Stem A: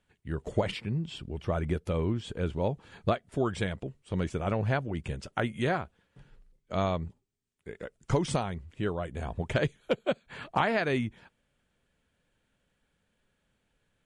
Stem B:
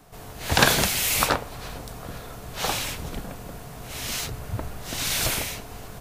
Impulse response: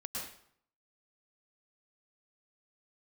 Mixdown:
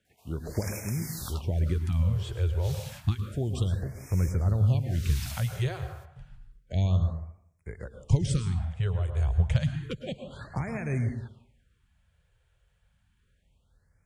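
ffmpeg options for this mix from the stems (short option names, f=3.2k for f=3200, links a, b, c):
-filter_complex "[0:a]asubboost=boost=8.5:cutoff=85,volume=-1.5dB,asplit=2[a][b];[b]volume=-6dB[c];[1:a]highpass=700,adelay=50,volume=-15.5dB[d];[2:a]atrim=start_sample=2205[e];[c][e]afir=irnorm=-1:irlink=0[f];[a][d][f]amix=inputs=3:normalize=0,highpass=47,acrossover=split=360|3000[g][h][i];[h]acompressor=threshold=-42dB:ratio=4[j];[g][j][i]amix=inputs=3:normalize=0,afftfilt=real='re*(1-between(b*sr/1024,220*pow(3700/220,0.5+0.5*sin(2*PI*0.3*pts/sr))/1.41,220*pow(3700/220,0.5+0.5*sin(2*PI*0.3*pts/sr))*1.41))':imag='im*(1-between(b*sr/1024,220*pow(3700/220,0.5+0.5*sin(2*PI*0.3*pts/sr))/1.41,220*pow(3700/220,0.5+0.5*sin(2*PI*0.3*pts/sr))*1.41))':win_size=1024:overlap=0.75"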